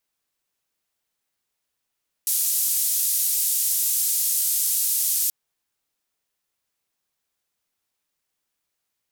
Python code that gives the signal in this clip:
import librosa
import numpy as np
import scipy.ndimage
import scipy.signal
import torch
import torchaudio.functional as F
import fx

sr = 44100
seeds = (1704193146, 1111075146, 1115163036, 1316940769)

y = fx.band_noise(sr, seeds[0], length_s=3.03, low_hz=7400.0, high_hz=15000.0, level_db=-22.5)